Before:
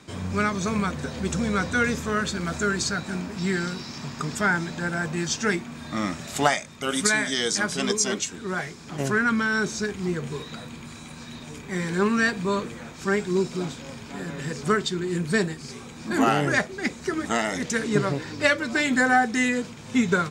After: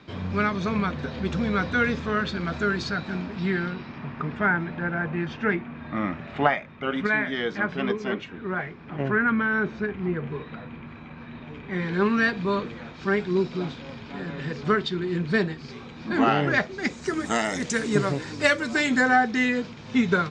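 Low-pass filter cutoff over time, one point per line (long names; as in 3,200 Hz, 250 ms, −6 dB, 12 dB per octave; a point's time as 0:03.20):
low-pass filter 24 dB per octave
0:03.23 4,200 Hz
0:04.00 2,600 Hz
0:11.35 2,600 Hz
0:12.06 4,300 Hz
0:16.52 4,300 Hz
0:17.14 9,200 Hz
0:18.63 9,200 Hz
0:19.24 5,100 Hz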